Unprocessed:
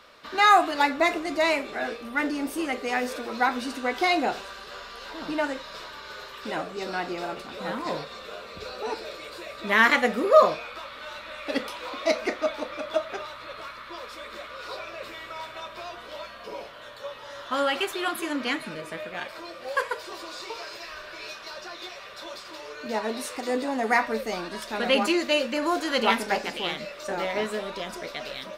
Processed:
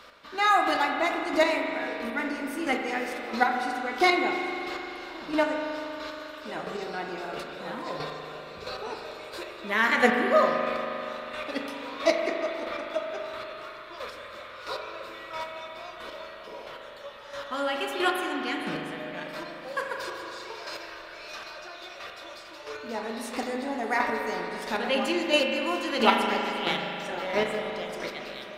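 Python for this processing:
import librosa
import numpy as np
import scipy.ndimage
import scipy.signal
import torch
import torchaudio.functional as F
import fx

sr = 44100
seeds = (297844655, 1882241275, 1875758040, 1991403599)

y = fx.chopper(x, sr, hz=1.5, depth_pct=60, duty_pct=15)
y = fx.rev_spring(y, sr, rt60_s=3.2, pass_ms=(39,), chirp_ms=50, drr_db=2.0)
y = y * librosa.db_to_amplitude(2.5)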